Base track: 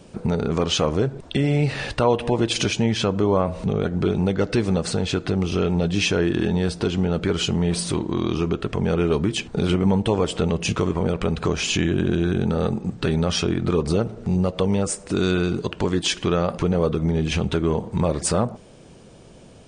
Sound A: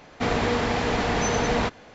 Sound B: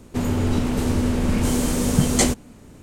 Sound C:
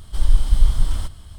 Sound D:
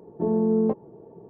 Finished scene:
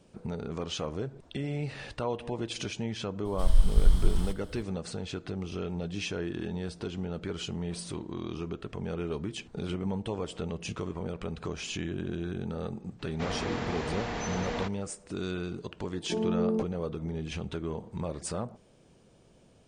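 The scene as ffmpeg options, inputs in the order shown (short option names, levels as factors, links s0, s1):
-filter_complex "[0:a]volume=0.211[s0];[3:a]atrim=end=1.38,asetpts=PTS-STARTPTS,volume=0.473,afade=t=in:d=0.004:c=hsin,afade=t=out:st=1.376:d=0.004:c=hsin,adelay=143325S[s1];[1:a]atrim=end=1.94,asetpts=PTS-STARTPTS,volume=0.299,afade=t=in:d=0.004:c=hsin,afade=t=out:st=1.936:d=0.004:c=hsin,adelay=12990[s2];[4:a]atrim=end=1.29,asetpts=PTS-STARTPTS,volume=0.473,afade=t=in:d=0.004:c=hsin,afade=t=out:st=1.286:d=0.004:c=hsin,adelay=15900[s3];[s0][s1][s2][s3]amix=inputs=4:normalize=0"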